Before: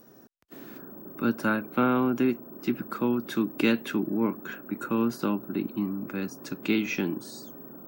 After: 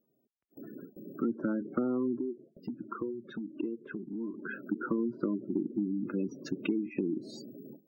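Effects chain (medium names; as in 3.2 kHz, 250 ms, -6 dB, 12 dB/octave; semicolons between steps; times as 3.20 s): gate with hold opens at -34 dBFS; spectral gate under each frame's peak -15 dB strong; low-pass that closes with the level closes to 830 Hz, closed at -24.5 dBFS; dynamic bell 340 Hz, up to +7 dB, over -39 dBFS, Q 1.6; compression, threshold -28 dBFS, peak gain reduction 12.5 dB; 2.19–4.34 s: Shepard-style flanger rising 1.4 Hz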